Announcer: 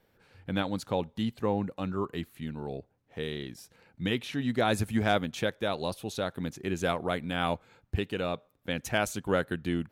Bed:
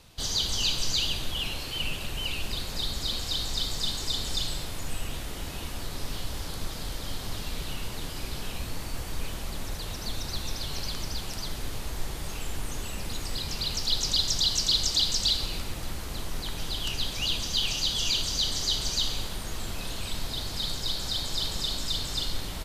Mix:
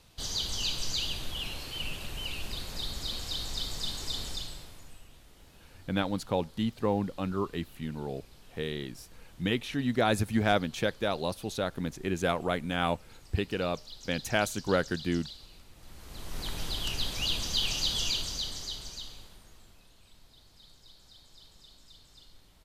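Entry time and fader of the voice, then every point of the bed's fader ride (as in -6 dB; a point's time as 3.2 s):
5.40 s, +0.5 dB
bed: 4.23 s -5 dB
5.08 s -20.5 dB
15.71 s -20.5 dB
16.45 s -2 dB
17.97 s -2 dB
19.91 s -25.5 dB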